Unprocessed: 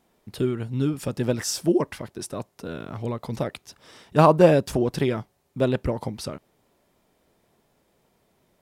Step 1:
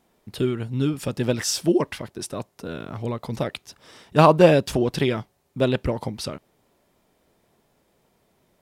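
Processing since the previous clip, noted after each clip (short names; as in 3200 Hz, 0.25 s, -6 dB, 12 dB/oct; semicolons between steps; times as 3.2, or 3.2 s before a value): dynamic EQ 3200 Hz, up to +6 dB, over -45 dBFS, Q 1; gain +1 dB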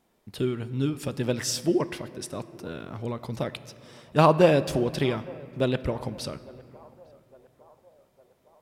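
narrowing echo 0.857 s, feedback 59%, band-pass 720 Hz, level -22 dB; on a send at -14 dB: reverb RT60 2.5 s, pre-delay 8 ms; on the sum: gain -4 dB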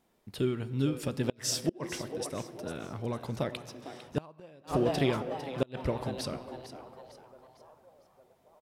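frequency-shifting echo 0.453 s, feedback 40%, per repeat +130 Hz, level -13 dB; flipped gate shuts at -13 dBFS, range -31 dB; gain -2.5 dB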